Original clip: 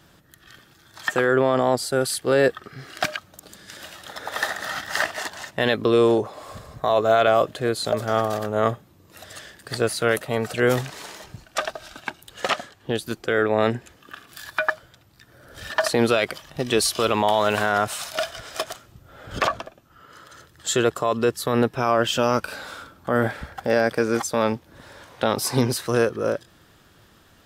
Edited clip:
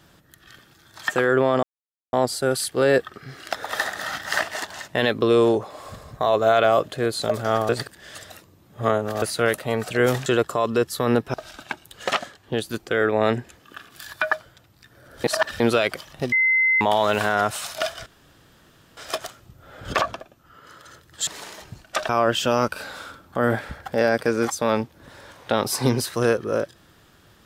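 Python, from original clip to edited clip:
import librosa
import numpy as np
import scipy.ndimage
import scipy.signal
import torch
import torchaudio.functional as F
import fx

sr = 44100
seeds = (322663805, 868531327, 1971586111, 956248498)

y = fx.edit(x, sr, fx.insert_silence(at_s=1.63, length_s=0.5),
    fx.cut(start_s=3.03, length_s=1.13),
    fx.reverse_span(start_s=8.32, length_s=1.53),
    fx.swap(start_s=10.89, length_s=0.82, other_s=20.73, other_length_s=1.08),
    fx.reverse_span(start_s=15.61, length_s=0.36),
    fx.bleep(start_s=16.69, length_s=0.49, hz=2060.0, db=-15.5),
    fx.insert_room_tone(at_s=18.43, length_s=0.91), tone=tone)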